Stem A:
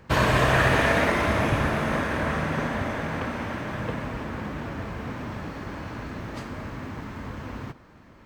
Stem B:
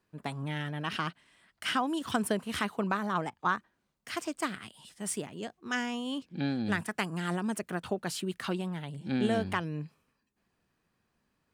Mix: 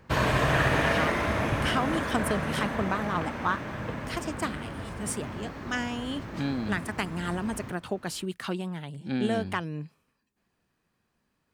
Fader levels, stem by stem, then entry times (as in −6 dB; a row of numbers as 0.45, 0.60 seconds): −4.0, +1.0 decibels; 0.00, 0.00 seconds